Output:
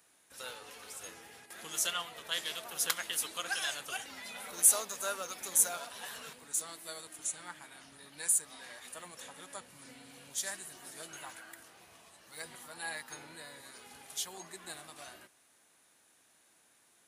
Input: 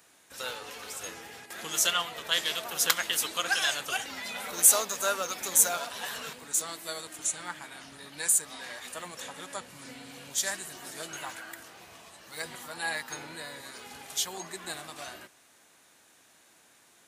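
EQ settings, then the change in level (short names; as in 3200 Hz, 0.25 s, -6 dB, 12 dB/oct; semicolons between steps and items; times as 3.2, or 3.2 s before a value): bell 10000 Hz +7.5 dB 0.26 oct; -8.0 dB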